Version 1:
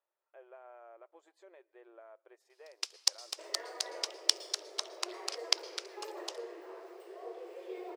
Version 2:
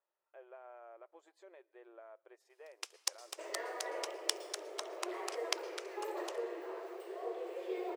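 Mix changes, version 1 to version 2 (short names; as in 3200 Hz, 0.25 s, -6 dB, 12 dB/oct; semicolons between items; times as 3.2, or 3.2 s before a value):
first sound: add bell 4600 Hz -11 dB 1 oct; second sound: send on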